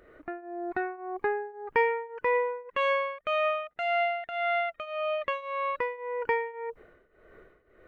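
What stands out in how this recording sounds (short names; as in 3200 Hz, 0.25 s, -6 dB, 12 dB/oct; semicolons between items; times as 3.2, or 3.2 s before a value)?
tremolo triangle 1.8 Hz, depth 90%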